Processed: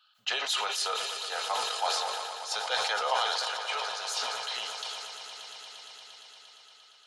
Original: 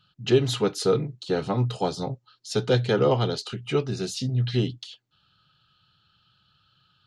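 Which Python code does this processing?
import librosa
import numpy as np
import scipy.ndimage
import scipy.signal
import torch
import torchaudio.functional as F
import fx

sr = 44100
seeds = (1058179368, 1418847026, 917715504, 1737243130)

y = scipy.signal.sosfilt(scipy.signal.cheby2(4, 40, 360.0, 'highpass', fs=sr, output='sos'), x)
y = fx.echo_swell(y, sr, ms=116, loudest=5, wet_db=-14)
y = fx.sustainer(y, sr, db_per_s=24.0)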